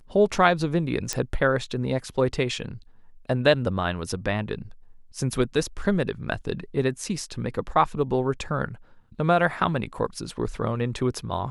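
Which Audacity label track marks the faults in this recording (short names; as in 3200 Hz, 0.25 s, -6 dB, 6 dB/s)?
1.130000	1.130000	pop -10 dBFS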